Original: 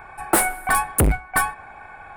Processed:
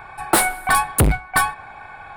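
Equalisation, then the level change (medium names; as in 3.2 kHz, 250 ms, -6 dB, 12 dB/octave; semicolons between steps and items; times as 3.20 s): graphic EQ 125/1000/4000 Hz +5/+3/+10 dB; 0.0 dB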